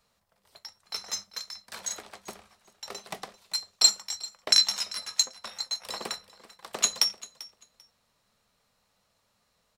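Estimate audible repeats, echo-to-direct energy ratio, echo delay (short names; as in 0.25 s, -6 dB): 2, -19.5 dB, 0.392 s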